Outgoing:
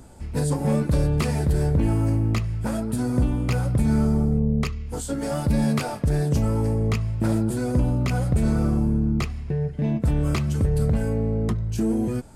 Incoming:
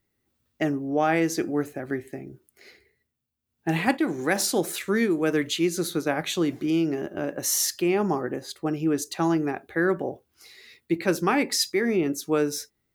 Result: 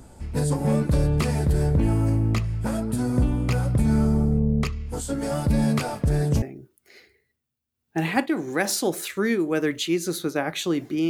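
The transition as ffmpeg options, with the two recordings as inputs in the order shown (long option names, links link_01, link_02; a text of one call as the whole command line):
ffmpeg -i cue0.wav -i cue1.wav -filter_complex "[1:a]asplit=2[link_01][link_02];[0:a]apad=whole_dur=11.09,atrim=end=11.09,atrim=end=6.422[link_03];[link_02]atrim=start=2.128:end=6.8[link_04];[link_01]atrim=start=1.67:end=2.13,asetpts=PTS-STARTPTS,volume=-14dB,afade=type=in:duration=0.004:curve=hsin,afade=type=out:start_time=0.456:duration=0.004:curve=hsin,adelay=5960[link_05];[link_03][link_04]acrossfade=duration=0.004:curve1=hsin:curve2=hsin[link_06];[link_06][link_05]amix=inputs=2:normalize=0" out.wav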